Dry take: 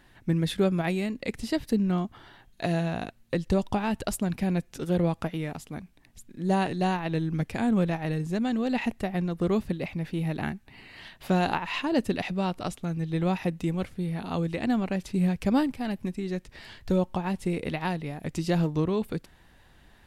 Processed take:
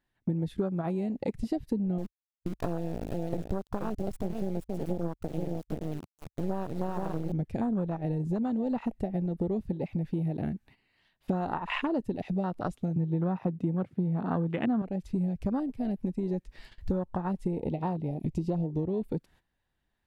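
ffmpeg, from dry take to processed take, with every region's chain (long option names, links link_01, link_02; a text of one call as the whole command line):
ffmpeg -i in.wav -filter_complex "[0:a]asettb=1/sr,asplit=3[link_01][link_02][link_03];[link_01]atrim=end=1.984[link_04];[link_02]atrim=start=1.98:end=7.32,asetpts=PTS-STARTPTS,afade=type=in:duration=0.004:curve=qsin,afade=type=out:start_time=5.336:duration=0.004:curve=qsin,aecho=1:1:478:0.562,atrim=end_sample=235494,acrusher=bits=3:dc=4:mix=0:aa=0.000001[link_05];[link_03]atrim=start=7.316[link_06];[link_04][link_05]acrossfade=duration=0.004:curve1=hsin:curve2=qsin[link_07];[link_07][link_06]acrossfade=duration=0.004:curve1=qsin:curve2=hsin,asettb=1/sr,asplit=3[link_08][link_09][link_10];[link_08]atrim=end=12.964[link_11];[link_09]atrim=start=12.96:end=14.82,asetpts=PTS-STARTPTS,afade=type=in:duration=0.004:curve=qsin,afade=type=out:start_time=1.856:duration=0.004:curve=qsin,highpass=frequency=120:width=0.5412,highpass=frequency=120:width=1.3066,bass=frequency=250:gain=3,treble=frequency=4000:gain=-10,acontrast=84[link_12];[link_10]atrim=start=14.816[link_13];[link_11][link_12]acrossfade=duration=0.004:curve1=hsin:curve2=qsin[link_14];[link_14][link_13]acrossfade=duration=0.004:curve1=qsin:curve2=hsin,asettb=1/sr,asplit=3[link_15][link_16][link_17];[link_15]atrim=end=17.514[link_18];[link_16]atrim=start=17.51:end=18.69,asetpts=PTS-STARTPTS,afade=type=in:duration=0.004:curve=qsin,afade=type=out:start_time=1.176:duration=0.004:curve=qsin,asuperstop=centerf=1500:order=4:qfactor=1.3,highshelf=frequency=4400:gain=-5[link_19];[link_17]atrim=start=18.686[link_20];[link_18][link_19]acrossfade=duration=0.004:curve1=hsin:curve2=qsin[link_21];[link_21][link_20]acrossfade=duration=0.004:curve1=qsin:curve2=hsin,afwtdn=0.0316,agate=range=-16dB:threshold=-57dB:ratio=16:detection=peak,acompressor=threshold=-37dB:ratio=6,volume=9dB" out.wav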